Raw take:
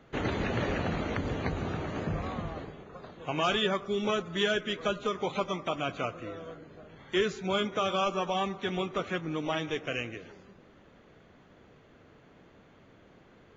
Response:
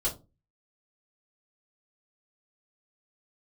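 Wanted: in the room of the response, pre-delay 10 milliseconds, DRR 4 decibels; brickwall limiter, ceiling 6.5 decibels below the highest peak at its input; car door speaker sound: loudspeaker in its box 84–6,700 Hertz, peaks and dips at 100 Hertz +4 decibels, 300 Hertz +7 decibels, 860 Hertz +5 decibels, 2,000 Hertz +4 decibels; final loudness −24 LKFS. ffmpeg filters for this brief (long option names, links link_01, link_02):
-filter_complex "[0:a]alimiter=limit=-22dB:level=0:latency=1,asplit=2[link_01][link_02];[1:a]atrim=start_sample=2205,adelay=10[link_03];[link_02][link_03]afir=irnorm=-1:irlink=0,volume=-10dB[link_04];[link_01][link_04]amix=inputs=2:normalize=0,highpass=84,equalizer=frequency=100:width_type=q:width=4:gain=4,equalizer=frequency=300:width_type=q:width=4:gain=7,equalizer=frequency=860:width_type=q:width=4:gain=5,equalizer=frequency=2000:width_type=q:width=4:gain=4,lowpass=frequency=6700:width=0.5412,lowpass=frequency=6700:width=1.3066,volume=6dB"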